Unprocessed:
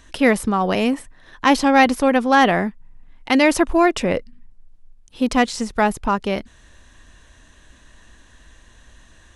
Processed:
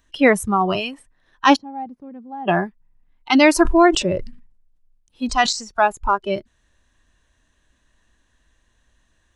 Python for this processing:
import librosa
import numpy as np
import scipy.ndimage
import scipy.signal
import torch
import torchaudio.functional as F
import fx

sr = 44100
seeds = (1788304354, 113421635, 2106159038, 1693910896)

y = fx.bandpass_q(x, sr, hz=180.0, q=1.5, at=(1.56, 2.48))
y = fx.noise_reduce_blind(y, sr, reduce_db=17)
y = fx.sustainer(y, sr, db_per_s=84.0, at=(3.58, 5.53))
y = y * 10.0 ** (2.5 / 20.0)